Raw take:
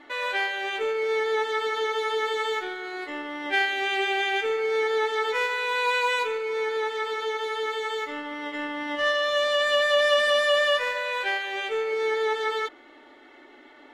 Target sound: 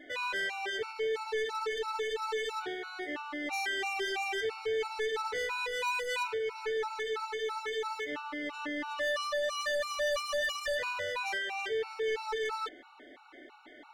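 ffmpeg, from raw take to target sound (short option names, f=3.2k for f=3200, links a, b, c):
-filter_complex "[0:a]asettb=1/sr,asplit=3[a][b][c];[a]atrim=end=10.284[d];[b]atrim=start=10.28:end=10.68,asetpts=PTS-STARTPTS,afade=t=in:d=0.004:c=qsin,afade=t=out:st=0.396:d=0.004:c=qsin,bandreject=f=147.8:t=h:w=4,bandreject=f=295.6:t=h:w=4,bandreject=f=443.4:t=h:w=4,bandreject=f=591.2:t=h:w=4,bandreject=f=739:t=h:w=4,bandreject=f=886.8:t=h:w=4,bandreject=f=1.0346k:t=h:w=4,bandreject=f=1.1824k:t=h:w=4,bandreject=f=1.3302k:t=h:w=4,bandreject=f=1.478k:t=h:w=4,bandreject=f=1.6258k:t=h:w=4,bandreject=f=1.7736k:t=h:w=4,bandreject=f=1.9214k:t=h:w=4,bandreject=f=2.0692k:t=h:w=4,bandreject=f=2.217k:t=h:w=4,bandreject=f=2.3648k:t=h:w=4,bandreject=f=2.5126k:t=h:w=4,bandreject=f=2.6604k:t=h:w=4,bandreject=f=2.8082k:t=h:w=4,bandreject=f=2.956k:t=h:w=4,bandreject=f=3.1038k:t=h:w=4,bandreject=f=3.2516k:t=h:w=4,bandreject=f=3.3994k:t=h:w=4,bandreject=f=3.5472k:t=h:w=4,bandreject=f=3.695k:t=h:w=4,bandreject=f=3.8428k:t=h:w=4,bandreject=f=3.9906k:t=h:w=4,bandreject=f=4.1384k:t=h:w=4,bandreject=f=4.2862k:t=h:w=4,bandreject=f=4.434k:t=h:w=4,bandreject=f=4.5818k:t=h:w=4,bandreject=f=4.7296k:t=h:w=4,bandreject=f=4.8774k:t=h:w=4,bandreject=f=5.0252k:t=h:w=4,bandreject=f=5.173k:t=h:w=4,bandreject=f=5.3208k:t=h:w=4,bandreject=f=5.4686k:t=h:w=4,bandreject=f=5.6164k:t=h:w=4,bandreject=f=5.7642k:t=h:w=4[e];[c]atrim=start=10.676[f];[d][e]acrossfade=d=0.004:c1=hsin:c2=qsin[g];[g][f]acrossfade=d=0.004:c1=qsin:c2=hsin,asoftclip=type=tanh:threshold=-27.5dB,afftfilt=real='re*gt(sin(2*PI*3*pts/sr)*(1-2*mod(floor(b*sr/1024/740),2)),0)':imag='im*gt(sin(2*PI*3*pts/sr)*(1-2*mod(floor(b*sr/1024/740),2)),0)':win_size=1024:overlap=0.75"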